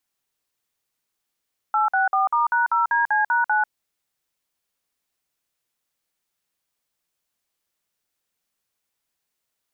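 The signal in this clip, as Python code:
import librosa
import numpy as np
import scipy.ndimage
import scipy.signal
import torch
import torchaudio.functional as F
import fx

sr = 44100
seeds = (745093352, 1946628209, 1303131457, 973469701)

y = fx.dtmf(sr, digits='864*#0DC#9', tone_ms=143, gap_ms=52, level_db=-19.5)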